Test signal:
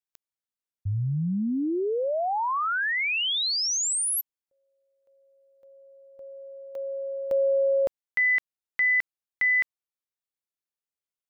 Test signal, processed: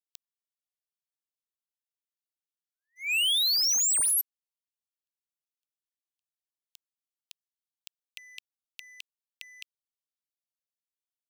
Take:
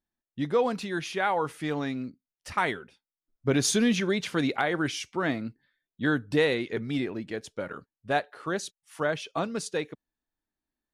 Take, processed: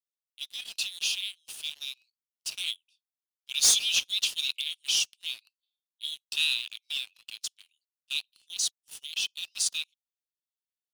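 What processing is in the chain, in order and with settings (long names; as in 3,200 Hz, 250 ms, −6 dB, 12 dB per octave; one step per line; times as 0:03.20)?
Butterworth high-pass 2,600 Hz 96 dB per octave
leveller curve on the samples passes 3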